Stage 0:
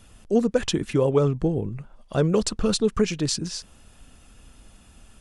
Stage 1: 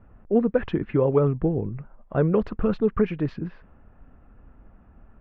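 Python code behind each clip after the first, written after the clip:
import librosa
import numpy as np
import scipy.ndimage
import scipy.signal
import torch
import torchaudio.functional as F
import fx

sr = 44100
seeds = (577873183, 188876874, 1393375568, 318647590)

y = scipy.signal.sosfilt(scipy.signal.butter(4, 2100.0, 'lowpass', fs=sr, output='sos'), x)
y = fx.env_lowpass(y, sr, base_hz=1300.0, full_db=-19.0)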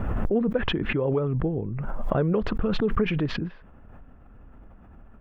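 y = fx.rider(x, sr, range_db=4, speed_s=0.5)
y = fx.peak_eq(y, sr, hz=3300.0, db=5.0, octaves=0.33)
y = fx.pre_swell(y, sr, db_per_s=20.0)
y = F.gain(torch.from_numpy(y), -4.0).numpy()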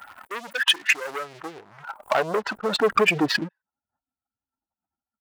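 y = fx.bin_expand(x, sr, power=2.0)
y = fx.leveller(y, sr, passes=3)
y = fx.filter_sweep_highpass(y, sr, from_hz=1600.0, to_hz=270.0, start_s=0.96, end_s=3.82, q=0.71)
y = F.gain(torch.from_numpy(y), 6.5).numpy()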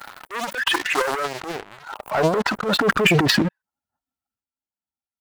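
y = fx.leveller(x, sr, passes=3)
y = fx.transient(y, sr, attack_db=-10, sustain_db=11)
y = F.gain(torch.from_numpy(y), -4.5).numpy()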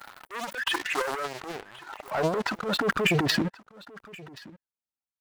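y = x + 10.0 ** (-21.0 / 20.0) * np.pad(x, (int(1077 * sr / 1000.0), 0))[:len(x)]
y = F.gain(torch.from_numpy(y), -7.0).numpy()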